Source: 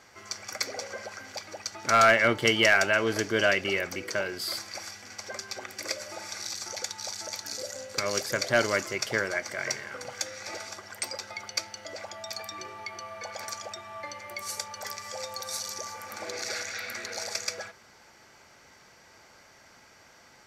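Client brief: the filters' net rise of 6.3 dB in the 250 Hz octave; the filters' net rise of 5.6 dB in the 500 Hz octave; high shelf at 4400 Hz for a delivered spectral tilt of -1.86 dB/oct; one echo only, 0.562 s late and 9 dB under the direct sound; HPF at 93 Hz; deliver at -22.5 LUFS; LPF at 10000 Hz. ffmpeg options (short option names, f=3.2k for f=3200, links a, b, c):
-af "highpass=93,lowpass=10k,equalizer=f=250:t=o:g=6.5,equalizer=f=500:t=o:g=5.5,highshelf=f=4.4k:g=8,aecho=1:1:562:0.355,volume=3.5dB"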